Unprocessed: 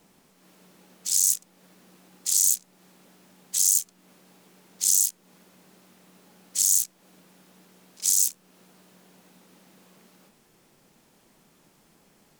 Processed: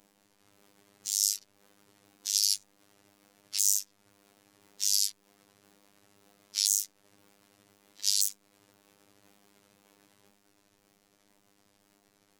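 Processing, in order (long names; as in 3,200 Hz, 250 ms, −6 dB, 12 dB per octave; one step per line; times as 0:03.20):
pitch shifter swept by a sawtooth −7 semitones, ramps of 513 ms
phases set to zero 101 Hz
mains-hum notches 50/100/150/200 Hz
level −2.5 dB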